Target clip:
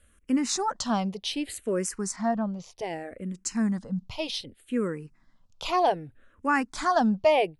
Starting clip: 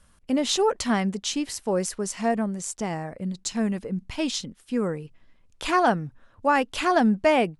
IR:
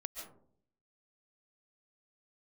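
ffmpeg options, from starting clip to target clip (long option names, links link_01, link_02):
-filter_complex "[0:a]asettb=1/sr,asplit=3[link_01][link_02][link_03];[link_01]atrim=end=2.164[link_04];[link_02]atrim=start=2.16:end=2.77,asetpts=PTS-STARTPTS,afade=type=in:duration=0.004:curve=qsin,afade=type=out:start_time=0.606:duration=0.004:curve=qsin,lowpass=3800[link_05];[link_03]atrim=start=2.766[link_06];[link_04][link_05]acrossfade=duration=0.004:curve1=hsin:curve2=qsin[link_07];[link_07][link_06]acrossfade=duration=0.004:curve1=qsin:curve2=hsin,asplit=2[link_08][link_09];[link_09]afreqshift=-0.65[link_10];[link_08][link_10]amix=inputs=2:normalize=1"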